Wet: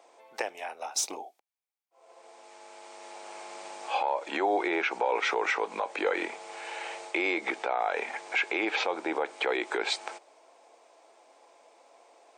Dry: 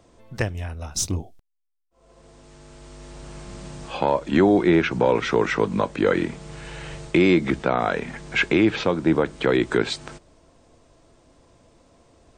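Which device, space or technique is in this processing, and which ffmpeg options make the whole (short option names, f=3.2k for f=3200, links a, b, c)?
laptop speaker: -af "highpass=f=420:w=0.5412,highpass=f=420:w=1.3066,equalizer=f=810:t=o:w=0.42:g=11,equalizer=f=2.3k:t=o:w=0.28:g=7,alimiter=limit=-15.5dB:level=0:latency=1:release=80,volume=-2dB"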